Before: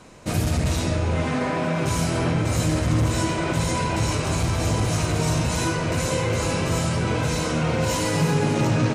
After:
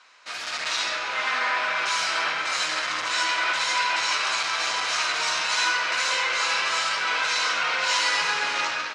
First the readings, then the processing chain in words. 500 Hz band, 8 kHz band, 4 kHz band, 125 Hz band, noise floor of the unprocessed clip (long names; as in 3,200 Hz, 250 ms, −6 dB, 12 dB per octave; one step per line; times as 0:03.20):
−11.0 dB, −0.5 dB, +7.5 dB, below −35 dB, −26 dBFS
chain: Chebyshev band-pass filter 1,300–4,800 Hz, order 2
automatic gain control gain up to 8.5 dB